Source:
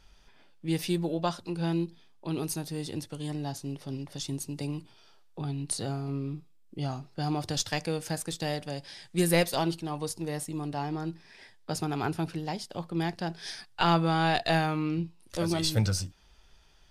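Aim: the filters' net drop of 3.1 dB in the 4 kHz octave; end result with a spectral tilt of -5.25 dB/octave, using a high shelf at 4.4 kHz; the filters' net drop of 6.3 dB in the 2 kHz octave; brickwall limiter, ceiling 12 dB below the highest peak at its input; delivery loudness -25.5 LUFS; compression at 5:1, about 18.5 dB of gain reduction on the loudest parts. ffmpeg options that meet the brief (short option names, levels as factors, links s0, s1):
-af "equalizer=f=2000:t=o:g=-8.5,equalizer=f=4000:t=o:g=-3.5,highshelf=f=4400:g=3.5,acompressor=threshold=0.00794:ratio=5,volume=11.9,alimiter=limit=0.168:level=0:latency=1"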